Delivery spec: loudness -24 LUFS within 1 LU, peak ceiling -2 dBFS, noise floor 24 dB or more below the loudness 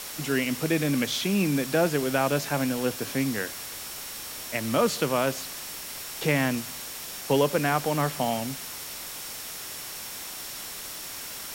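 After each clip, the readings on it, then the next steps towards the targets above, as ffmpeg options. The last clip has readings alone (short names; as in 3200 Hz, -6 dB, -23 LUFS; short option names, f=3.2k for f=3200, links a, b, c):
steady tone 5500 Hz; tone level -47 dBFS; noise floor -38 dBFS; noise floor target -52 dBFS; loudness -28.0 LUFS; peak -10.5 dBFS; loudness target -24.0 LUFS
-> -af "bandreject=f=5.5k:w=30"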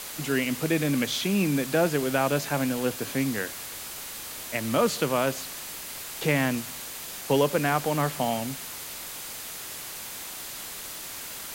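steady tone none; noise floor -39 dBFS; noise floor target -52 dBFS
-> -af "afftdn=nr=13:nf=-39"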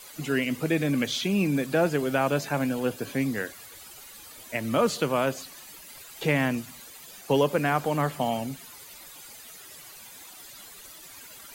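noise floor -47 dBFS; noise floor target -51 dBFS
-> -af "afftdn=nr=6:nf=-47"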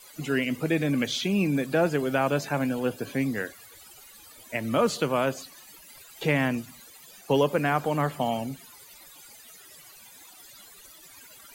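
noise floor -51 dBFS; loudness -27.0 LUFS; peak -10.5 dBFS; loudness target -24.0 LUFS
-> -af "volume=3dB"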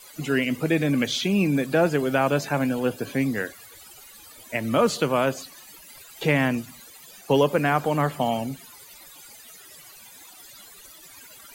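loudness -24.0 LUFS; peak -7.5 dBFS; noise floor -48 dBFS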